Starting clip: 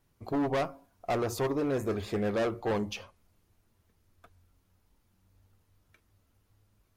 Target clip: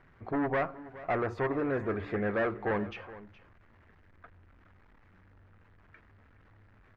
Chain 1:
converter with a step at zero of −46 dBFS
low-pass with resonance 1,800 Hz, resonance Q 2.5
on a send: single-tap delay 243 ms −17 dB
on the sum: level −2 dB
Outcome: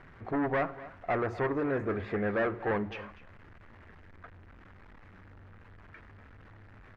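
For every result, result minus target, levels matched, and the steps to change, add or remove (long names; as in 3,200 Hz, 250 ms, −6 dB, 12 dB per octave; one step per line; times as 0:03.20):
echo 176 ms early; converter with a step at zero: distortion +8 dB
change: single-tap delay 419 ms −17 dB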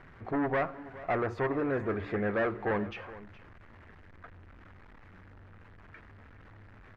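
converter with a step at zero: distortion +8 dB
change: converter with a step at zero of −54.5 dBFS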